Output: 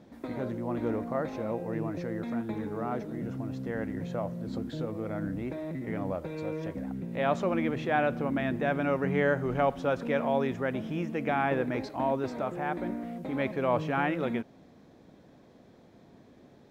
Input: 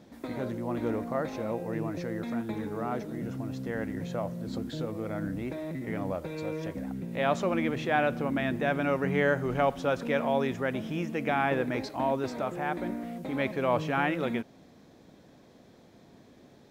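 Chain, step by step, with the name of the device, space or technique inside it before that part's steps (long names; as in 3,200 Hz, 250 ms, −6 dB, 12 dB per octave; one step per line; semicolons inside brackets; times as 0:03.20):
behind a face mask (high-shelf EQ 3,000 Hz −7.5 dB)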